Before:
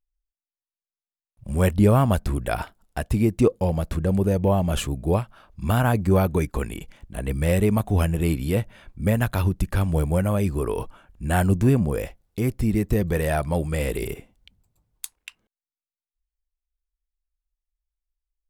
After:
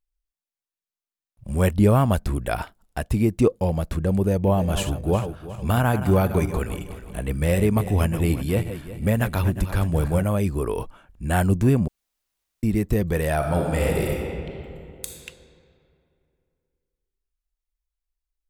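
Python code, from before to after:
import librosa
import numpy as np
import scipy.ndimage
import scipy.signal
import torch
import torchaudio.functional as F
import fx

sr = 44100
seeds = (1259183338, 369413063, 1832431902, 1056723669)

y = fx.reverse_delay_fb(x, sr, ms=181, feedback_pct=56, wet_db=-10.5, at=(4.29, 10.25))
y = fx.reverb_throw(y, sr, start_s=13.35, length_s=1.79, rt60_s=2.7, drr_db=-0.5)
y = fx.edit(y, sr, fx.room_tone_fill(start_s=11.88, length_s=0.75), tone=tone)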